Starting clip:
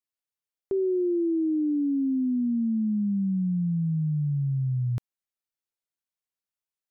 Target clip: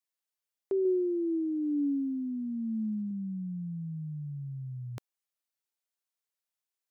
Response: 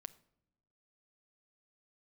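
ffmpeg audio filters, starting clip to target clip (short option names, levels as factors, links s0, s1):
-filter_complex "[0:a]asettb=1/sr,asplit=3[s0][s1][s2];[s0]atrim=end=0.854[s3];[s1]atrim=start=0.85:end=3.11,asetpts=PTS-STARTPTS,afade=t=in:d=0.004:c=qsin,afade=t=out:st=2.256:d=0.004:c=qsin,aphaser=in_gain=1:out_gain=1:delay=2.3:decay=0.25:speed=1:type=triangular[s4];[s2]atrim=start=3.106[s5];[s3][s4]acrossfade=d=0.004:c1=hsin:c2=qsin[s6];[s6][s5]acrossfade=d=0.004:c1=qsin:c2=hsin,bass=f=250:g=-14,treble=f=4000:g=2"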